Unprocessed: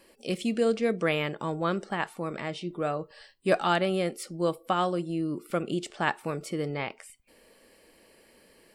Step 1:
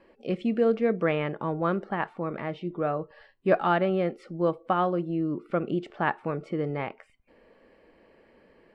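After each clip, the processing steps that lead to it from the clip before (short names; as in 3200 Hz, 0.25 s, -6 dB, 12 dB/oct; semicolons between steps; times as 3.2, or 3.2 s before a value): LPF 1800 Hz 12 dB/oct; gain +2 dB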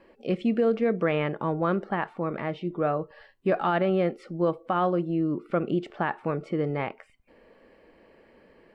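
limiter -17 dBFS, peak gain reduction 7 dB; gain +2 dB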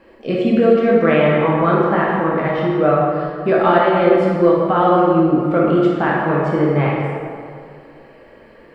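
plate-style reverb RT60 2.2 s, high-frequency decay 0.6×, DRR -5 dB; gain +6 dB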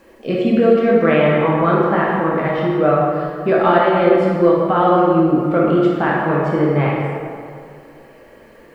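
requantised 10-bit, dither none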